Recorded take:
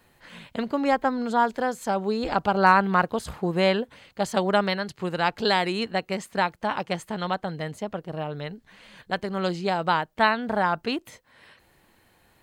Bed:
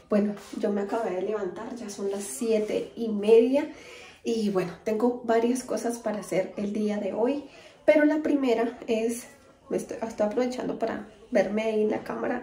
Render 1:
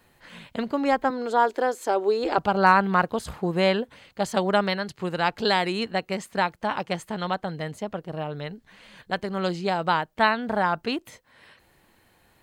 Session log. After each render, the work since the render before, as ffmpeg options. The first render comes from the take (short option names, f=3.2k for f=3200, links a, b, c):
-filter_complex "[0:a]asettb=1/sr,asplit=3[a][b][c];[a]atrim=end=1.104[d];[b]atrim=start=1.1:end=2.38,asetpts=PTS-STARTPTS,afade=t=in:d=0.004:c=qsin,afade=t=out:st=1.276:d=0.004:c=qsin,lowshelf=f=240:t=q:w=3:g=-12[e];[c]atrim=start=2.376[f];[d][e]acrossfade=d=0.004:c1=hsin:c2=qsin[g];[g][f]acrossfade=d=0.004:c1=qsin:c2=hsin"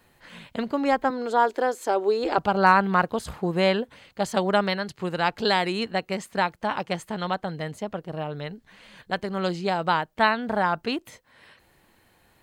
-af anull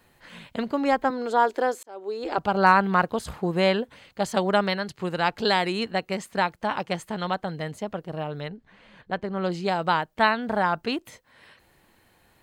-filter_complex "[0:a]asettb=1/sr,asplit=3[a][b][c];[a]atrim=end=8.484[d];[b]atrim=start=8.48:end=9.52,asetpts=PTS-STARTPTS,afade=t=in:d=0.004:c=qsin,afade=t=out:st=1.036:d=0.004:c=qsin,lowpass=f=1.7k:p=1[e];[c]atrim=start=9.516[f];[d][e]acrossfade=d=0.004:c1=hsin:c2=qsin[g];[g][f]acrossfade=d=0.004:c1=qsin:c2=hsin,asplit=2[h][i];[h]atrim=end=1.83,asetpts=PTS-STARTPTS,afade=t=out:st=1.826:d=0.004:c=hsin[j];[i]atrim=start=1.83,asetpts=PTS-STARTPTS,afade=t=in:d=0.76[k];[j][k]concat=n=2:v=0:a=1"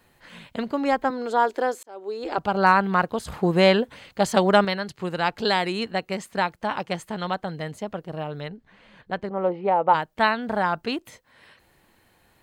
-filter_complex "[0:a]asettb=1/sr,asplit=3[a][b][c];[a]atrim=end=3.324[d];[b]atrim=start=3.32:end=4.65,asetpts=PTS-STARTPTS,afade=t=in:d=0.004:c=qsin,afade=t=out:st=1.326:d=0.004:c=qsin,acontrast=21[e];[c]atrim=start=4.646[f];[d][e]acrossfade=d=0.004:c1=hsin:c2=qsin[g];[g][f]acrossfade=d=0.004:c1=qsin:c2=hsin,asplit=3[h][i][j];[h]afade=t=out:st=9.29:d=0.02[k];[i]highpass=150,equalizer=f=170:t=q:w=4:g=-5,equalizer=f=510:t=q:w=4:g=9,equalizer=f=860:t=q:w=4:g=9,equalizer=f=1.6k:t=q:w=4:g=-9,lowpass=f=2.2k:w=0.5412,lowpass=f=2.2k:w=1.3066,afade=t=in:st=9.29:d=0.02,afade=t=out:st=9.93:d=0.02[l];[j]afade=t=in:st=9.93:d=0.02[m];[k][l][m]amix=inputs=3:normalize=0"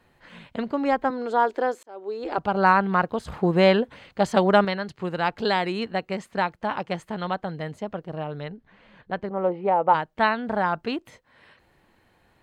-af "lowpass=f=2.9k:p=1"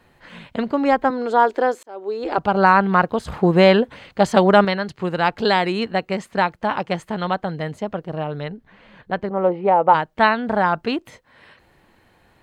-af "volume=5.5dB,alimiter=limit=-2dB:level=0:latency=1"